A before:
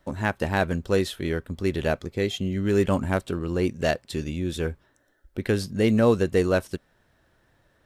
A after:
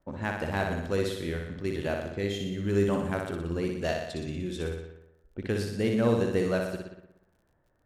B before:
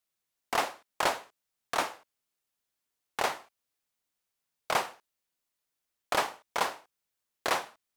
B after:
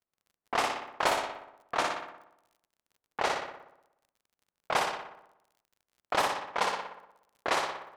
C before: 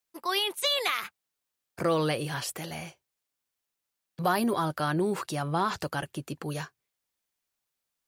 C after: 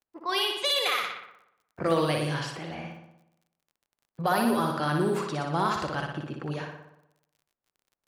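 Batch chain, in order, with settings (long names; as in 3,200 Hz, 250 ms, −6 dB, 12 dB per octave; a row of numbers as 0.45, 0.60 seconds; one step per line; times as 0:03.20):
flutter between parallel walls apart 10.3 metres, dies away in 0.87 s
low-pass that shuts in the quiet parts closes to 1,100 Hz, open at −21.5 dBFS
surface crackle 44 per second −52 dBFS
normalise the peak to −12 dBFS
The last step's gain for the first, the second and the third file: −7.0, −0.5, −0.5 decibels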